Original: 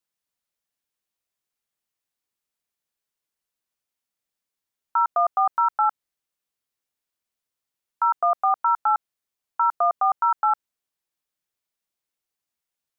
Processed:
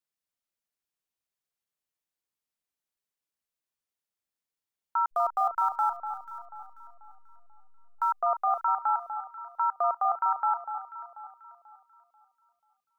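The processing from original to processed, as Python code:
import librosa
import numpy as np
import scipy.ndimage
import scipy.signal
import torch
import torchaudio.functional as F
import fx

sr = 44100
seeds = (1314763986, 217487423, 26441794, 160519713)

y = fx.delta_hold(x, sr, step_db=-43.0, at=(5.11, 8.11), fade=0.02)
y = fx.echo_alternate(y, sr, ms=244, hz=1300.0, feedback_pct=59, wet_db=-7.5)
y = y * librosa.db_to_amplitude(-6.0)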